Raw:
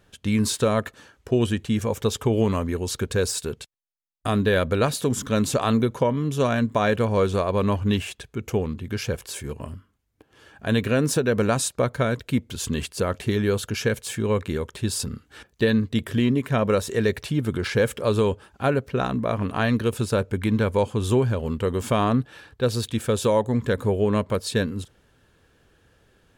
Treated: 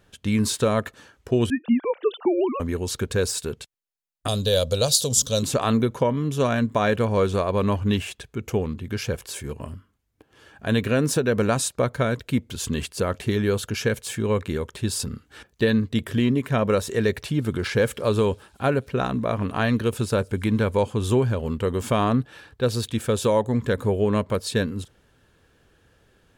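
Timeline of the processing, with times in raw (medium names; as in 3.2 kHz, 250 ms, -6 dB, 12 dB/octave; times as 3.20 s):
1.50–2.60 s: formants replaced by sine waves
4.28–5.43 s: FFT filter 130 Hz 0 dB, 180 Hz -6 dB, 360 Hz -12 dB, 520 Hz +4 dB, 890 Hz -7 dB, 2 kHz -14 dB, 3.2 kHz +6 dB, 4.6 kHz +14 dB, 7 kHz +13 dB, 10 kHz +9 dB
17.15–20.76 s: feedback echo behind a high-pass 169 ms, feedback 74%, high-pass 5.2 kHz, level -22 dB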